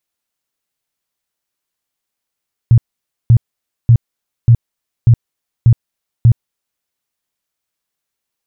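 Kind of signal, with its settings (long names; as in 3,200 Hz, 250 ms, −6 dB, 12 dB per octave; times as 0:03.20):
tone bursts 117 Hz, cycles 8, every 0.59 s, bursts 7, −3 dBFS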